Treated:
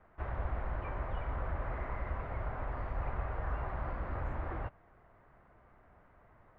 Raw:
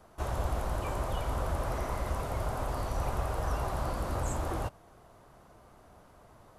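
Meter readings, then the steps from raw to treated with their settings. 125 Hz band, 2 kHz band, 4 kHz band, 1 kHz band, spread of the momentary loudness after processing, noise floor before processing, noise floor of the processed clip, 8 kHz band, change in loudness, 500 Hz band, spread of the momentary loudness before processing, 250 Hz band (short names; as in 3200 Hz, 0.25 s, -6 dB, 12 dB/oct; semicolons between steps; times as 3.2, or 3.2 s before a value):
-4.5 dB, -2.0 dB, -16.5 dB, -6.0 dB, 2 LU, -58 dBFS, -63 dBFS, under -35 dB, -5.0 dB, -7.5 dB, 1 LU, -7.0 dB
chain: ladder low-pass 2300 Hz, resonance 50%; low shelf 75 Hz +7 dB; gain +1.5 dB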